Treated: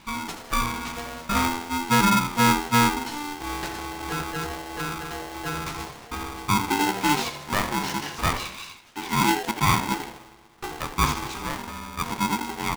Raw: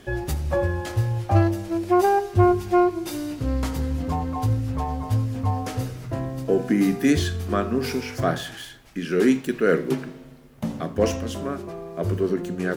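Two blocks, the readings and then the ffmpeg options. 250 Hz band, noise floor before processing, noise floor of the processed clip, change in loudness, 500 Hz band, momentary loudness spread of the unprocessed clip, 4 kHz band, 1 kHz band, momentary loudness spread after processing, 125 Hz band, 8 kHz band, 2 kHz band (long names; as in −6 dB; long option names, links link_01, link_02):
−4.5 dB, −44 dBFS, −48 dBFS, −1.5 dB, −11.0 dB, 11 LU, +8.0 dB, +3.5 dB, 14 LU, −7.0 dB, +8.0 dB, +5.0 dB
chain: -filter_complex "[0:a]highpass=310,lowpass=7200,asplit=5[link_01][link_02][link_03][link_04][link_05];[link_02]adelay=80,afreqshift=-85,volume=-10dB[link_06];[link_03]adelay=160,afreqshift=-170,volume=-19.4dB[link_07];[link_04]adelay=240,afreqshift=-255,volume=-28.7dB[link_08];[link_05]adelay=320,afreqshift=-340,volume=-38.1dB[link_09];[link_01][link_06][link_07][link_08][link_09]amix=inputs=5:normalize=0,aeval=exprs='val(0)*sgn(sin(2*PI*590*n/s))':channel_layout=same"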